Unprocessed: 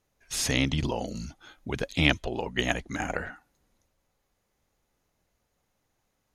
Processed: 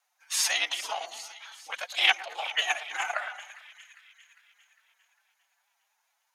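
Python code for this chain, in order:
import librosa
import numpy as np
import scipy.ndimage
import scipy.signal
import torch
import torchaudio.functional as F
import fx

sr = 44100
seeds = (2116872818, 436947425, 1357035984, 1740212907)

p1 = scipy.signal.sosfilt(scipy.signal.butter(4, 780.0, 'highpass', fs=sr, output='sos'), x)
p2 = p1 * np.sin(2.0 * np.pi * 61.0 * np.arange(len(p1)) / sr)
p3 = p2 + fx.echo_split(p2, sr, split_hz=1800.0, low_ms=111, high_ms=403, feedback_pct=52, wet_db=-14.0, dry=0)
p4 = fx.pitch_keep_formants(p3, sr, semitones=6.5)
y = p4 * librosa.db_to_amplitude(7.0)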